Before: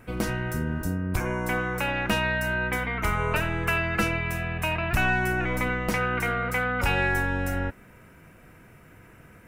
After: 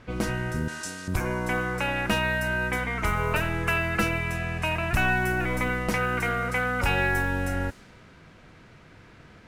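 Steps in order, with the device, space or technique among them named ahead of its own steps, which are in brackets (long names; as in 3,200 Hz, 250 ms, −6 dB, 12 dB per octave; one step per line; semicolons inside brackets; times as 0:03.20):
cassette deck with a dynamic noise filter (white noise bed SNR 25 dB; low-pass that shuts in the quiet parts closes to 2,700 Hz, open at −21.5 dBFS)
0:00.68–0:01.08: meter weighting curve ITU-R 468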